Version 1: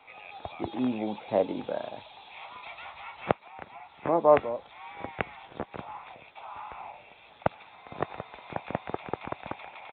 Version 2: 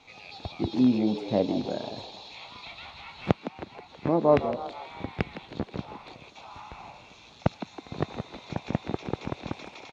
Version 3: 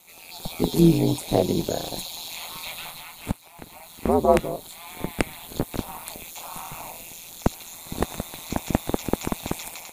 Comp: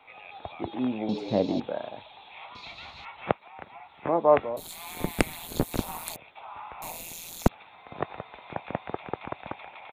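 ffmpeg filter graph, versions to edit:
-filter_complex "[1:a]asplit=2[s0][s1];[2:a]asplit=2[s2][s3];[0:a]asplit=5[s4][s5][s6][s7][s8];[s4]atrim=end=1.092[s9];[s0]atrim=start=1.088:end=1.602[s10];[s5]atrim=start=1.598:end=2.552[s11];[s1]atrim=start=2.548:end=3.052[s12];[s6]atrim=start=3.048:end=4.572[s13];[s2]atrim=start=4.568:end=6.162[s14];[s7]atrim=start=6.158:end=6.822[s15];[s3]atrim=start=6.818:end=7.482[s16];[s8]atrim=start=7.478[s17];[s9][s10]acrossfade=d=0.004:c1=hsin:c2=hsin[s18];[s18][s11]acrossfade=d=0.004:c1=hsin:c2=hsin[s19];[s19][s12]acrossfade=d=0.004:c1=hsin:c2=hsin[s20];[s20][s13]acrossfade=d=0.004:c1=hsin:c2=hsin[s21];[s21][s14]acrossfade=d=0.004:c1=hsin:c2=hsin[s22];[s22][s15]acrossfade=d=0.004:c1=hsin:c2=hsin[s23];[s23][s16]acrossfade=d=0.004:c1=hsin:c2=hsin[s24];[s24][s17]acrossfade=d=0.004:c1=hsin:c2=hsin"

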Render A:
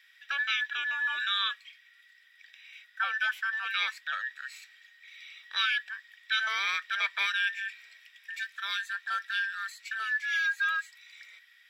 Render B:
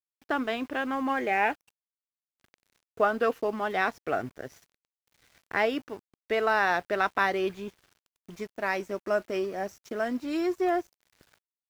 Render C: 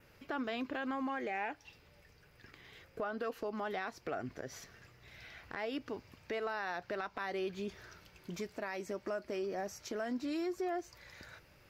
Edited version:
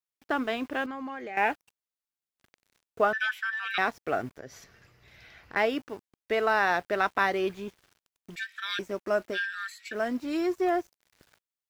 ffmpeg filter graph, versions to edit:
-filter_complex "[2:a]asplit=2[s0][s1];[0:a]asplit=3[s2][s3][s4];[1:a]asplit=6[s5][s6][s7][s8][s9][s10];[s5]atrim=end=0.862[s11];[s0]atrim=start=0.858:end=1.372[s12];[s6]atrim=start=1.368:end=3.132[s13];[s2]atrim=start=3.128:end=3.782[s14];[s7]atrim=start=3.778:end=4.382[s15];[s1]atrim=start=4.378:end=5.562[s16];[s8]atrim=start=5.558:end=8.362[s17];[s3]atrim=start=8.358:end=8.792[s18];[s9]atrim=start=8.788:end=9.38[s19];[s4]atrim=start=9.32:end=9.96[s20];[s10]atrim=start=9.9[s21];[s11][s12]acrossfade=d=0.004:c1=hsin:c2=hsin[s22];[s22][s13]acrossfade=d=0.004:c1=hsin:c2=hsin[s23];[s23][s14]acrossfade=d=0.004:c1=hsin:c2=hsin[s24];[s24][s15]acrossfade=d=0.004:c1=hsin:c2=hsin[s25];[s25][s16]acrossfade=d=0.004:c1=hsin:c2=hsin[s26];[s26][s17]acrossfade=d=0.004:c1=hsin:c2=hsin[s27];[s27][s18]acrossfade=d=0.004:c1=hsin:c2=hsin[s28];[s28][s19]acrossfade=d=0.004:c1=hsin:c2=hsin[s29];[s29][s20]acrossfade=d=0.06:c1=tri:c2=tri[s30];[s30][s21]acrossfade=d=0.06:c1=tri:c2=tri"

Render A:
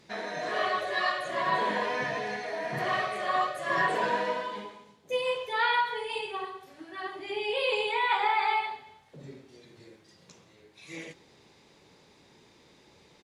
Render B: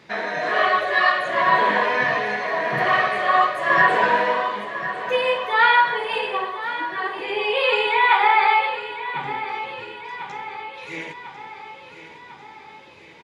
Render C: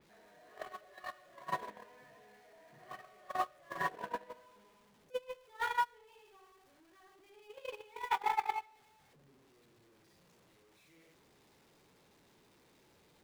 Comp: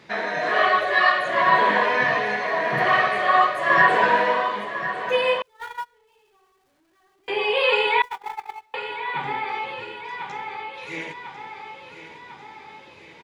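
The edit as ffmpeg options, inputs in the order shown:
-filter_complex "[2:a]asplit=2[s0][s1];[1:a]asplit=3[s2][s3][s4];[s2]atrim=end=5.422[s5];[s0]atrim=start=5.418:end=7.282[s6];[s3]atrim=start=7.278:end=8.022[s7];[s1]atrim=start=8.018:end=8.742[s8];[s4]atrim=start=8.738[s9];[s5][s6]acrossfade=d=0.004:c1=hsin:c2=hsin[s10];[s10][s7]acrossfade=d=0.004:c1=hsin:c2=hsin[s11];[s11][s8]acrossfade=d=0.004:c1=hsin:c2=hsin[s12];[s12][s9]acrossfade=d=0.004:c1=hsin:c2=hsin"

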